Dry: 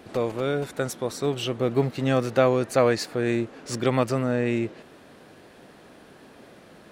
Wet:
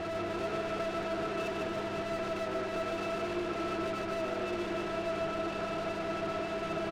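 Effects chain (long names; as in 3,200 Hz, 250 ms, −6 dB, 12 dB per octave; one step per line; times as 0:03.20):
compressor on every frequency bin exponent 0.4
downward compressor, threshold −20 dBFS, peak gain reduction 9 dB
resonances in every octave E, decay 0.13 s
mid-hump overdrive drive 33 dB, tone 3,300 Hz, clips at −22.5 dBFS
hum with harmonics 100 Hz, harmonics 4, −41 dBFS −1 dB per octave
on a send: bouncing-ball delay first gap 150 ms, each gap 0.9×, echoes 5
on the sum: level −8 dB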